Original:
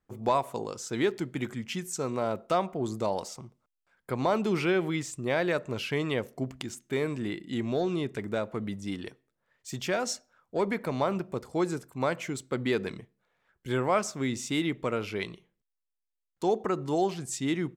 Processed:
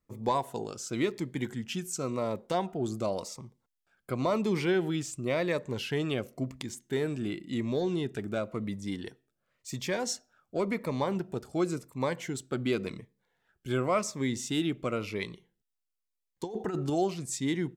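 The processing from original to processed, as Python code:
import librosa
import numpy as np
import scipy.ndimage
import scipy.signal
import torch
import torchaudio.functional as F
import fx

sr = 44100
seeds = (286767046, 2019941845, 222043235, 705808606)

y = fx.over_compress(x, sr, threshold_db=-30.0, ratio=-0.5, at=(16.44, 16.9))
y = fx.notch_cascade(y, sr, direction='falling', hz=0.93)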